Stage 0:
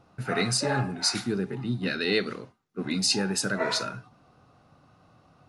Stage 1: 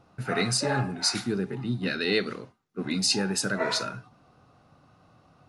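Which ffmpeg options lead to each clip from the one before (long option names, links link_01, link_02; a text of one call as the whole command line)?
ffmpeg -i in.wav -af anull out.wav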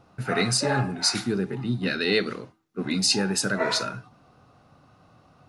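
ffmpeg -i in.wav -af "bandreject=frequency=162:width_type=h:width=4,bandreject=frequency=324:width_type=h:width=4,volume=2.5dB" out.wav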